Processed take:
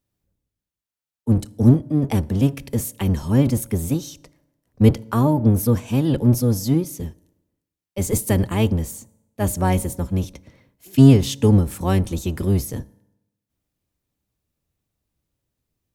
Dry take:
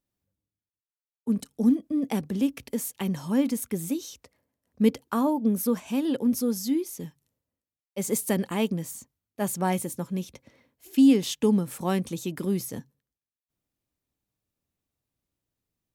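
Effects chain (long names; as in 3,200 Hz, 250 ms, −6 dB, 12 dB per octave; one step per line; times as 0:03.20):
sub-octave generator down 1 octave, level +3 dB
on a send: convolution reverb RT60 0.95 s, pre-delay 3 ms, DRR 20.5 dB
on the sum: level +4 dB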